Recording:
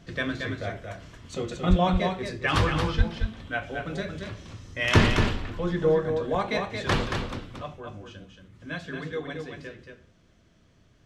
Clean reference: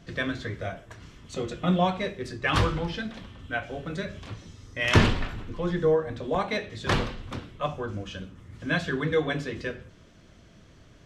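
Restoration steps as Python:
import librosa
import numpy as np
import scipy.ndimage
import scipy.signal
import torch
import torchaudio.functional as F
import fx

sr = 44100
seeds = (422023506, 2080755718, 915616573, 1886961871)

y = fx.highpass(x, sr, hz=140.0, slope=24, at=(1.69, 1.81), fade=0.02)
y = fx.highpass(y, sr, hz=140.0, slope=24, at=(2.97, 3.09), fade=0.02)
y = fx.fix_echo_inverse(y, sr, delay_ms=227, level_db=-5.5)
y = fx.fix_level(y, sr, at_s=7.57, step_db=8.5)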